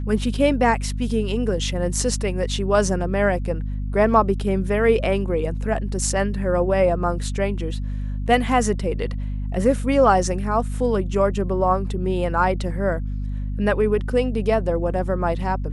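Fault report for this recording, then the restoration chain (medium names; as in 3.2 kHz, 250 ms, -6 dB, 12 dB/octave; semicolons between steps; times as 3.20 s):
hum 50 Hz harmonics 5 -26 dBFS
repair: de-hum 50 Hz, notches 5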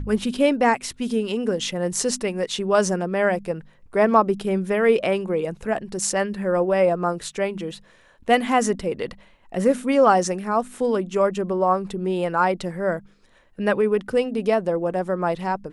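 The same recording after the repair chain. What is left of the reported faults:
nothing left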